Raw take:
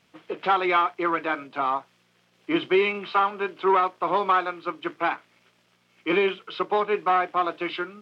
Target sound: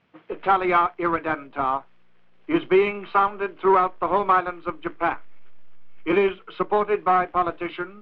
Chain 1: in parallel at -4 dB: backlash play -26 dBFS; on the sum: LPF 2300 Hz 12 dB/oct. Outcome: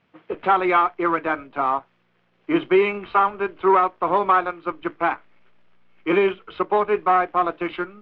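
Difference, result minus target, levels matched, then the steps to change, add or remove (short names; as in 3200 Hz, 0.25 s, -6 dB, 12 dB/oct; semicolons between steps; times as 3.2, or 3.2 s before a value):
backlash: distortion -12 dB
change: backlash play -15.5 dBFS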